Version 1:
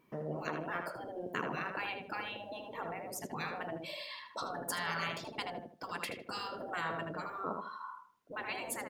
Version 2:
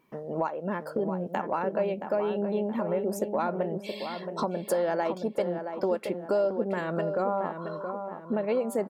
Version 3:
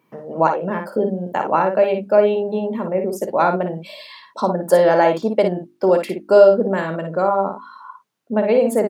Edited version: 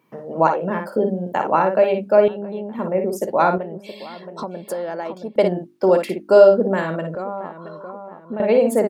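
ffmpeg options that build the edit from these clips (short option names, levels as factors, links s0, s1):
-filter_complex "[1:a]asplit=3[s0][s1][s2];[2:a]asplit=4[s3][s4][s5][s6];[s3]atrim=end=2.282[s7];[s0]atrim=start=2.278:end=2.792[s8];[s4]atrim=start=2.788:end=3.582[s9];[s1]atrim=start=3.578:end=5.362[s10];[s5]atrim=start=5.358:end=7.152[s11];[s2]atrim=start=7.148:end=8.402[s12];[s6]atrim=start=8.398[s13];[s7][s8]acrossfade=d=0.004:c1=hsin:c2=hsin[s14];[s14][s9]acrossfade=d=0.004:c1=hsin:c2=hsin[s15];[s15][s10]acrossfade=d=0.004:c1=hsin:c2=hsin[s16];[s16][s11]acrossfade=d=0.004:c1=hsin:c2=hsin[s17];[s17][s12]acrossfade=d=0.004:c1=hsin:c2=hsin[s18];[s18][s13]acrossfade=d=0.004:c1=hsin:c2=hsin"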